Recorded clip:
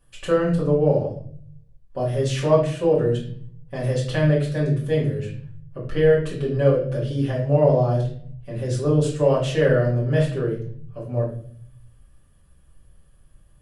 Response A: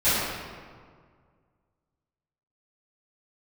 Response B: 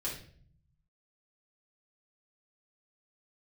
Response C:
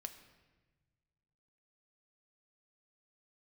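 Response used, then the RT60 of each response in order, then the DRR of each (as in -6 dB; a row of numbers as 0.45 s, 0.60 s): B; 1.9 s, 0.50 s, 1.3 s; -18.5 dB, -6.0 dB, 7.0 dB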